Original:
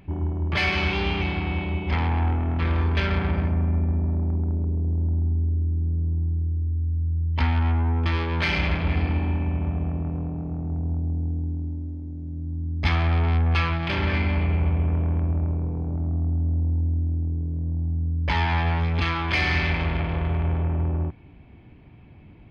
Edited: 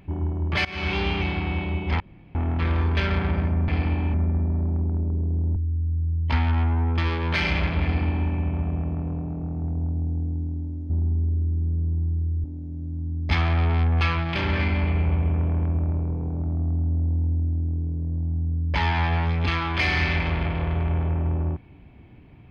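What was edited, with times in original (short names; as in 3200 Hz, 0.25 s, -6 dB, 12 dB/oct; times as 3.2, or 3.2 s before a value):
0.65–0.94 fade in, from -22.5 dB
2–2.35 room tone
5.1–6.64 move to 11.98
8.92–9.38 copy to 3.68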